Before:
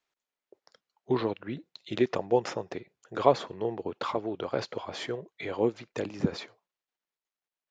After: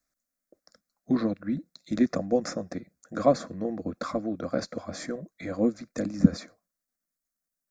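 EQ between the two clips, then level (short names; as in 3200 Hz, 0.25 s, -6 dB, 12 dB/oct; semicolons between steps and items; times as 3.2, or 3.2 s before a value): tone controls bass +12 dB, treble +10 dB; low shelf 490 Hz +4.5 dB; fixed phaser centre 600 Hz, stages 8; 0.0 dB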